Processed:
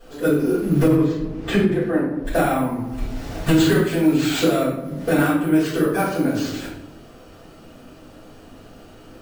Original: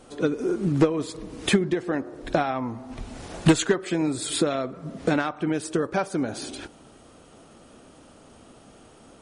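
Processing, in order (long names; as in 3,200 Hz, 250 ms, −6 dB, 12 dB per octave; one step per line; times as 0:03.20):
bad sample-rate conversion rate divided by 4×, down none, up hold
0:00.89–0:02.25: low-pass filter 1,800 Hz 6 dB per octave
rectangular room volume 140 cubic metres, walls mixed, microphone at 5.1 metres
boost into a limiter −4 dB
level −6 dB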